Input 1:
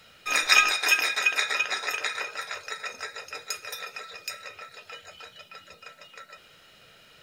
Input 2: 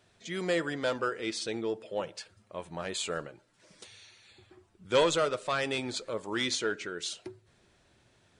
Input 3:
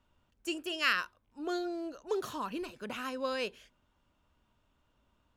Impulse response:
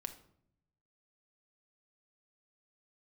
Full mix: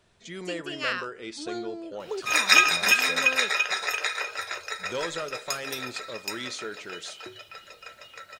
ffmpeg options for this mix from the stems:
-filter_complex "[0:a]highpass=frequency=320:width=0.5412,highpass=frequency=320:width=1.3066,adelay=2000,volume=1.5dB[link_01];[1:a]acompressor=threshold=-42dB:ratio=1.5,volume=-2.5dB,asplit=2[link_02][link_03];[link_03]volume=-6dB[link_04];[2:a]lowpass=frequency=9200:width=0.5412,lowpass=frequency=9200:width=1.3066,volume=-0.5dB[link_05];[3:a]atrim=start_sample=2205[link_06];[link_04][link_06]afir=irnorm=-1:irlink=0[link_07];[link_01][link_02][link_05][link_07]amix=inputs=4:normalize=0"

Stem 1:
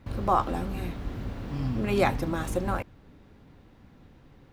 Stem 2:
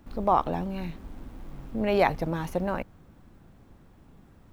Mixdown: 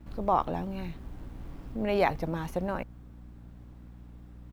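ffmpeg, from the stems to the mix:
ffmpeg -i stem1.wav -i stem2.wav -filter_complex "[0:a]acompressor=threshold=-36dB:ratio=6,volume=-10dB[link_01];[1:a]aeval=exprs='val(0)+0.00631*(sin(2*PI*60*n/s)+sin(2*PI*2*60*n/s)/2+sin(2*PI*3*60*n/s)/3+sin(2*PI*4*60*n/s)/4+sin(2*PI*5*60*n/s)/5)':channel_layout=same,adelay=7.4,volume=-3dB,asplit=2[link_02][link_03];[link_03]apad=whole_len=199535[link_04];[link_01][link_04]sidechaincompress=threshold=-37dB:ratio=8:attack=16:release=859[link_05];[link_05][link_02]amix=inputs=2:normalize=0" out.wav

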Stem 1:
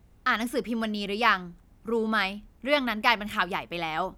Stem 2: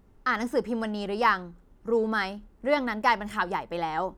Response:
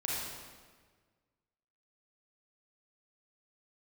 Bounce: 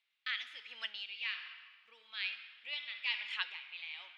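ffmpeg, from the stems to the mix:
-filter_complex "[0:a]volume=-4dB,asplit=2[link_01][link_02];[link_02]volume=-13.5dB[link_03];[1:a]dynaudnorm=framelen=210:gausssize=5:maxgain=12.5dB,aeval=exprs='val(0)*pow(10,-19*(0.5-0.5*cos(2*PI*1.2*n/s))/20)':channel_layout=same,volume=-3dB,asplit=2[link_04][link_05];[link_05]apad=whole_len=184147[link_06];[link_01][link_06]sidechaincompress=threshold=-35dB:ratio=8:attack=45:release=883[link_07];[2:a]atrim=start_sample=2205[link_08];[link_03][link_08]afir=irnorm=-1:irlink=0[link_09];[link_07][link_04][link_09]amix=inputs=3:normalize=0,asuperpass=centerf=3000:order=4:qfactor=1.6"

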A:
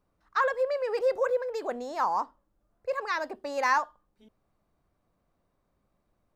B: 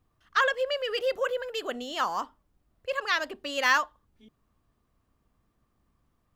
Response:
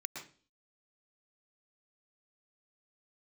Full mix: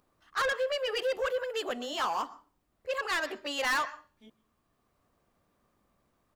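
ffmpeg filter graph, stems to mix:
-filter_complex "[0:a]agate=range=-24dB:threshold=-60dB:ratio=16:detection=peak,acompressor=mode=upward:threshold=-40dB:ratio=2.5,volume=-6.5dB[link_01];[1:a]adelay=13,volume=0dB,asplit=2[link_02][link_03];[link_03]volume=-15dB[link_04];[2:a]atrim=start_sample=2205[link_05];[link_04][link_05]afir=irnorm=-1:irlink=0[link_06];[link_01][link_02][link_06]amix=inputs=3:normalize=0,lowshelf=frequency=140:gain=-10,asoftclip=type=tanh:threshold=-25dB"

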